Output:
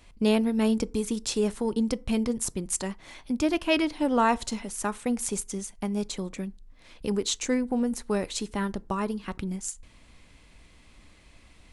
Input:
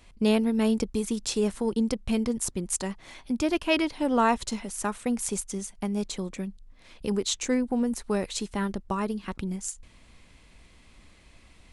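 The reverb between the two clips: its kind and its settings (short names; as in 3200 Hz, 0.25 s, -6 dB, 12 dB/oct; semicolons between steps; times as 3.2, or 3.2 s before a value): FDN reverb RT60 0.38 s, low-frequency decay 1×, high-frequency decay 0.55×, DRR 18 dB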